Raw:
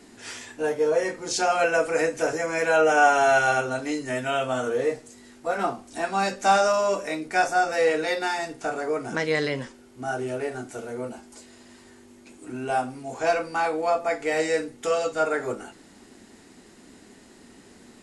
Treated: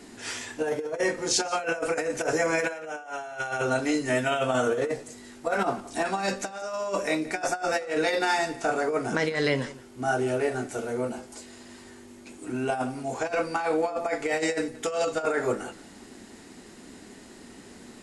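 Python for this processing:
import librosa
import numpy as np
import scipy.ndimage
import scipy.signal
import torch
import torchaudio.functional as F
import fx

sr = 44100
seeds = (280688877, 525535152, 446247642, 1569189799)

p1 = fx.over_compress(x, sr, threshold_db=-26.0, ratio=-0.5)
y = p1 + fx.echo_single(p1, sr, ms=175, db=-18.5, dry=0)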